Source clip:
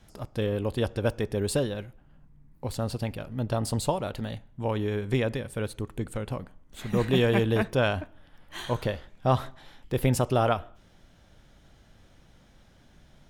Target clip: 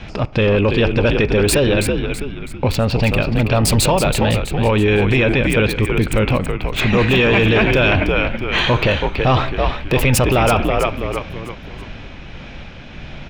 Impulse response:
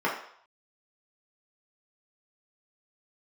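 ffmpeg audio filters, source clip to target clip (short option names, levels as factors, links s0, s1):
-filter_complex "[0:a]equalizer=f=2500:t=o:w=0.33:g=12,asplit=2[s0][s1];[s1]acompressor=threshold=0.0141:ratio=12,volume=1.26[s2];[s0][s2]amix=inputs=2:normalize=0,tremolo=f=1.6:d=0.3,acrossover=split=5200[s3][s4];[s4]aeval=exprs='val(0)*gte(abs(val(0)),0.0168)':c=same[s5];[s3][s5]amix=inputs=2:normalize=0,asplit=6[s6][s7][s8][s9][s10][s11];[s7]adelay=327,afreqshift=-77,volume=0.398[s12];[s8]adelay=654,afreqshift=-154,volume=0.164[s13];[s9]adelay=981,afreqshift=-231,volume=0.0668[s14];[s10]adelay=1308,afreqshift=-308,volume=0.0275[s15];[s11]adelay=1635,afreqshift=-385,volume=0.0112[s16];[s6][s12][s13][s14][s15][s16]amix=inputs=6:normalize=0,apsyclip=17.8,volume=0.355"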